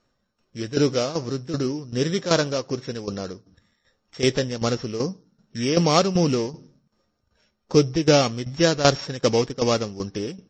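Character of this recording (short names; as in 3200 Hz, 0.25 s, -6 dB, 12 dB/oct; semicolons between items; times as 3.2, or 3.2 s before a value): a buzz of ramps at a fixed pitch in blocks of 8 samples; tremolo saw down 2.6 Hz, depth 75%; MP3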